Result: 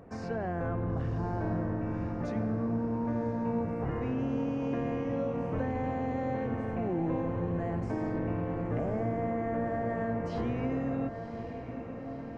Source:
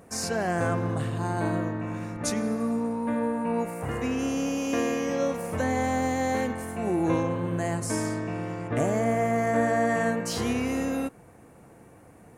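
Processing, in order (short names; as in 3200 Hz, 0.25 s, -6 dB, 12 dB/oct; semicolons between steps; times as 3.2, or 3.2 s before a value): octaver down 1 oct, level -6 dB; notches 50/100/150/200/250 Hz; in parallel at +0.5 dB: limiter -23 dBFS, peak gain reduction 11 dB; on the sum: compressor 2.5:1, threshold -25 dBFS, peak gain reduction 6 dB; tape spacing loss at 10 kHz 42 dB; on a send: diffused feedback echo 1.05 s, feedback 63%, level -9 dB; on the sum: gain -4 dB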